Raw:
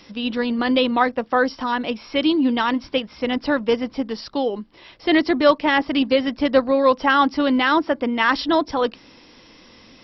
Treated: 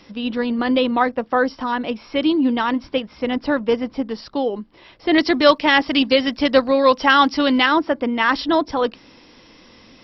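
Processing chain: high shelf 2500 Hz -5.5 dB, from 5.18 s +9 dB, from 7.66 s -2 dB; gain +1 dB

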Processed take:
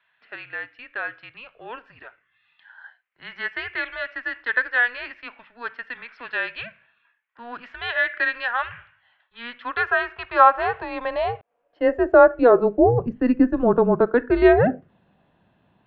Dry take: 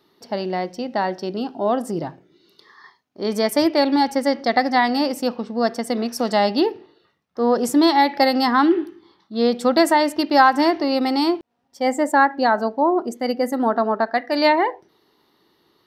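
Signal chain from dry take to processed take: high-pass sweep 2000 Hz -> 480 Hz, 9.34–13.17; mistuned SSB -240 Hz 220–3100 Hz; gain -1.5 dB

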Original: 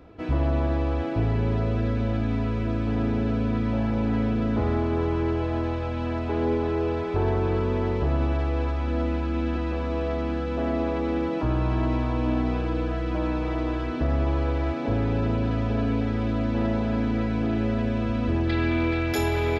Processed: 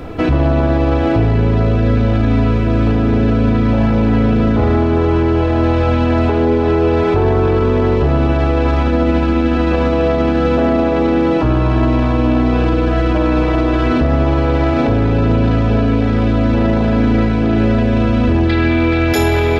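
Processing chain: added noise brown -58 dBFS; on a send at -12.5 dB: reverb RT60 0.90 s, pre-delay 3 ms; on the sum: maximiser +26 dB; gain -5.5 dB

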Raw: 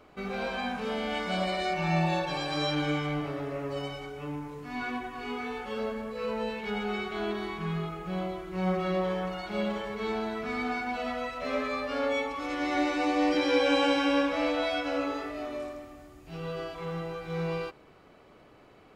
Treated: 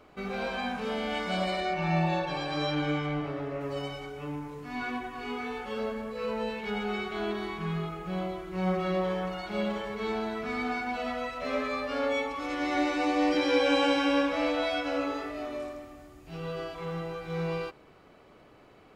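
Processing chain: 1.6–3.61 high shelf 6200 Hz -11.5 dB

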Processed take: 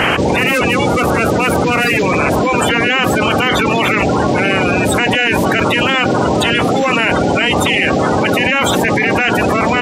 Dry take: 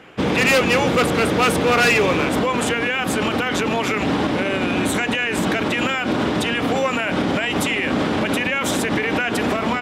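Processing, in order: bin magnitudes rounded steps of 30 dB; fast leveller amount 100%; gain +1.5 dB

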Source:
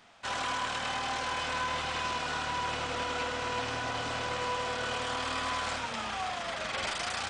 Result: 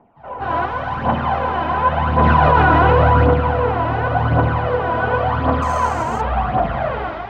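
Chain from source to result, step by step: ending faded out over 0.70 s; reverb RT60 1.1 s, pre-delay 0.149 s, DRR -11 dB; 0.65–1.05 hard clip -11.5 dBFS, distortion -20 dB; 5.62–6.21 careless resampling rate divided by 6×, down filtered, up zero stuff; phaser 0.91 Hz, delay 3.2 ms, feedback 57%; LPF 1300 Hz 12 dB/oct; 2.18–3.34 fast leveller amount 100%; gain -9 dB

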